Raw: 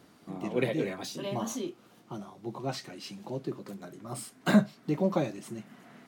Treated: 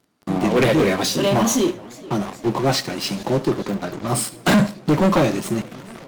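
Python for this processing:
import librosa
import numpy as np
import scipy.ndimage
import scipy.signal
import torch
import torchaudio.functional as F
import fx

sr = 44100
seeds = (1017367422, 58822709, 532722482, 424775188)

y = fx.peak_eq(x, sr, hz=11000.0, db=-13.0, octaves=1.1, at=(3.63, 4.07))
y = fx.leveller(y, sr, passes=5)
y = fx.echo_feedback(y, sr, ms=74, feedback_pct=35, wet_db=-18.0)
y = fx.echo_warbled(y, sr, ms=427, feedback_pct=78, rate_hz=2.8, cents=185, wet_db=-23.5)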